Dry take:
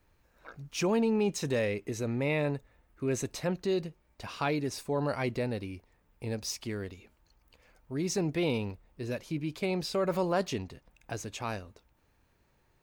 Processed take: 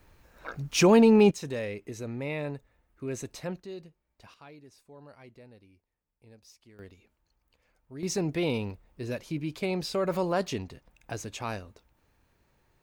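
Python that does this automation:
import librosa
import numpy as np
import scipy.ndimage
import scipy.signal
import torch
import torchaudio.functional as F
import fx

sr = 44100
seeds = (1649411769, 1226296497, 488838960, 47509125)

y = fx.gain(x, sr, db=fx.steps((0.0, 9.0), (1.31, -4.0), (3.6, -11.5), (4.34, -20.0), (6.79, -8.0), (8.03, 1.0)))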